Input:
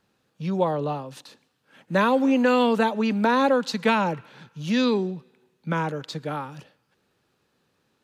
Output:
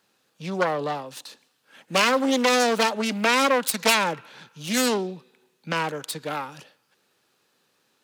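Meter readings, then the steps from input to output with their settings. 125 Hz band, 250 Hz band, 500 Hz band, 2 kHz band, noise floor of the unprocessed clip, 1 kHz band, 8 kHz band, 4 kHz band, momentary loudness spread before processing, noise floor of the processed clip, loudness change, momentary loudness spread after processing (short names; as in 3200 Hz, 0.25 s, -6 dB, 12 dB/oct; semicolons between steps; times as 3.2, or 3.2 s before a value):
-6.0 dB, -4.5 dB, -1.0 dB, +4.0 dB, -71 dBFS, +0.5 dB, +16.0 dB, +7.5 dB, 15 LU, -69 dBFS, +0.5 dB, 16 LU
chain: self-modulated delay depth 0.41 ms; HPF 380 Hz 6 dB/oct; high shelf 3600 Hz +7 dB; gain +2 dB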